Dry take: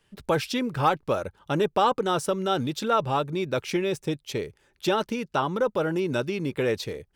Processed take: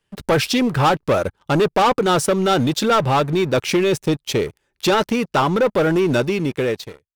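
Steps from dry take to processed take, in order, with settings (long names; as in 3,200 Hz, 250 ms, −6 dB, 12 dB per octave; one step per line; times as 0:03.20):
fade-out on the ending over 1.04 s
leveller curve on the samples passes 3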